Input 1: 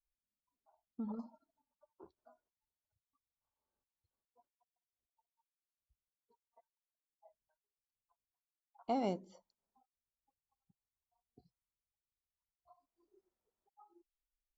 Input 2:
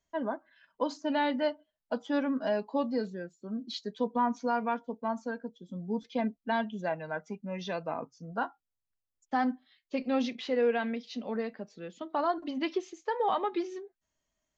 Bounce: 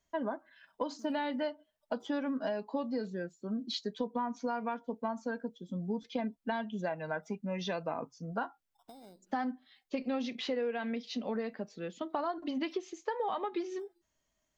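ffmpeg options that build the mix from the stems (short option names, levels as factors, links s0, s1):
-filter_complex "[0:a]acompressor=threshold=0.00708:ratio=6,acrusher=samples=10:mix=1:aa=0.000001,volume=0.398[s0];[1:a]volume=1.33[s1];[s0][s1]amix=inputs=2:normalize=0,acompressor=threshold=0.0282:ratio=6"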